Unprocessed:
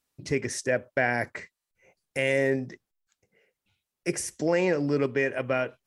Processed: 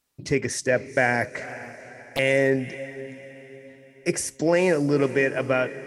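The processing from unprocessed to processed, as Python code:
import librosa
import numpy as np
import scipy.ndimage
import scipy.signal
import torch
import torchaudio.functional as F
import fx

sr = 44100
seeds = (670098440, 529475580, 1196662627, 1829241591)

y = fx.echo_diffused(x, sr, ms=478, feedback_pct=45, wet_db=-15)
y = fx.doppler_dist(y, sr, depth_ms=0.61, at=(1.41, 2.19))
y = y * librosa.db_to_amplitude(4.0)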